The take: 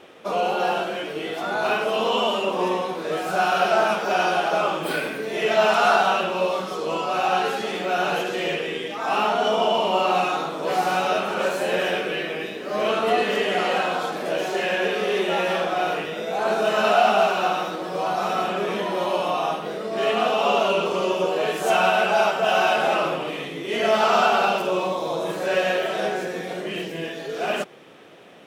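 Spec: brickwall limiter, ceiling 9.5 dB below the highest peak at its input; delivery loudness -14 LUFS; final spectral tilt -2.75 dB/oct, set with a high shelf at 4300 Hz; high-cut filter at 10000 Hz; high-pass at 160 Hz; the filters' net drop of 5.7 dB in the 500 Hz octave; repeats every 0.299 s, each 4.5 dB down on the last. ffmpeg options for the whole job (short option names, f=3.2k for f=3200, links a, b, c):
-af "highpass=160,lowpass=10k,equalizer=f=500:t=o:g=-8,highshelf=f=4.3k:g=3.5,alimiter=limit=-17dB:level=0:latency=1,aecho=1:1:299|598|897|1196|1495|1794|2093|2392|2691:0.596|0.357|0.214|0.129|0.0772|0.0463|0.0278|0.0167|0.01,volume=11dB"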